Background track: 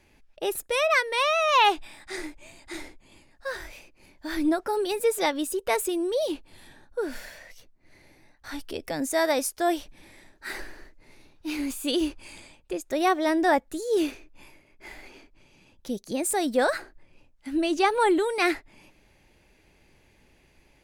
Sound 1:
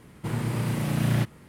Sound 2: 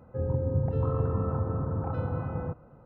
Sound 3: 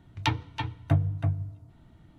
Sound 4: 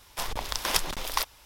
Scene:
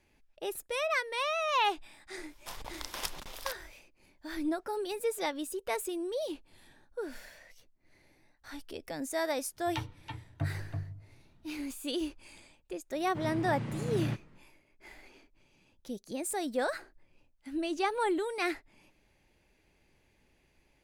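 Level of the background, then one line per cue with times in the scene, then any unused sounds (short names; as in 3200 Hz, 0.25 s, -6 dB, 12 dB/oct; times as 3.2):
background track -8.5 dB
2.29 add 4 -11 dB
9.5 add 3 -10.5 dB, fades 0.10 s
12.91 add 1 -9.5 dB + air absorption 120 m
not used: 2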